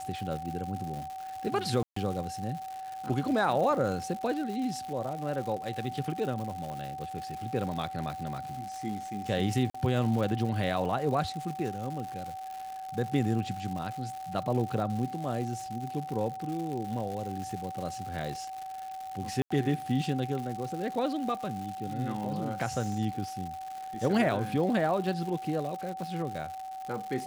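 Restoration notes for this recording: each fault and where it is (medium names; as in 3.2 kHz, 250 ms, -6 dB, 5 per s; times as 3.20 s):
crackle 210 per s -36 dBFS
whine 760 Hz -37 dBFS
1.83–1.96 s: dropout 134 ms
6.70 s: pop -28 dBFS
9.70–9.74 s: dropout 44 ms
19.42–19.50 s: dropout 85 ms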